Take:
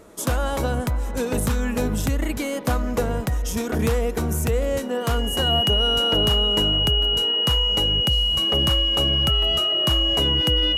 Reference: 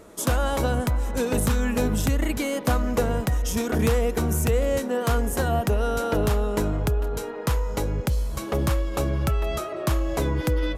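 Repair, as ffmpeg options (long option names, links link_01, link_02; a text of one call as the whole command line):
ffmpeg -i in.wav -af "bandreject=frequency=2900:width=30" out.wav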